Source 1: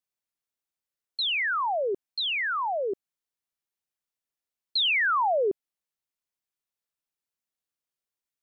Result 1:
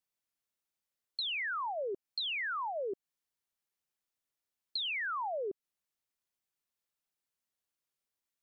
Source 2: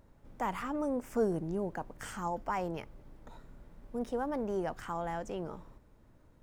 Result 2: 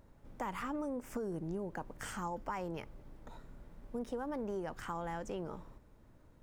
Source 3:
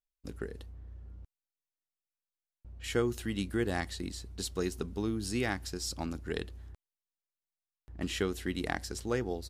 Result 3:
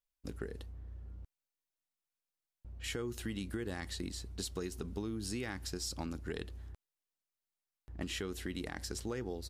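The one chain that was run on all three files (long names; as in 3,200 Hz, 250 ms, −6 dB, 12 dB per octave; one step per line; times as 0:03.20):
dynamic equaliser 700 Hz, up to −6 dB, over −49 dBFS, Q 5.2
brickwall limiter −24.5 dBFS
downward compressor, threshold −35 dBFS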